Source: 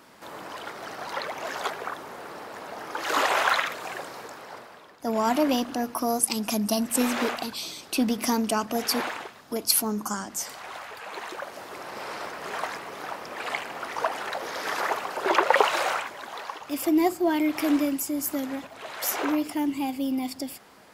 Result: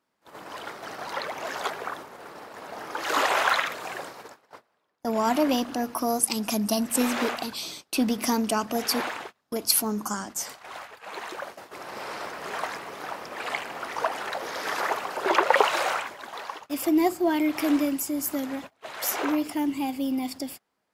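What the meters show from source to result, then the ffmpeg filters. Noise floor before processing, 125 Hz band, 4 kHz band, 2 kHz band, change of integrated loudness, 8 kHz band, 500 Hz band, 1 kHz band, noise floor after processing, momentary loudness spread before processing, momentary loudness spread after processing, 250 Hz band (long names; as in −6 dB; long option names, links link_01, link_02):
−49 dBFS, 0.0 dB, 0.0 dB, 0.0 dB, 0.0 dB, 0.0 dB, 0.0 dB, 0.0 dB, −73 dBFS, 15 LU, 16 LU, 0.0 dB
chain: -af "agate=range=-25dB:threshold=-39dB:ratio=16:detection=peak"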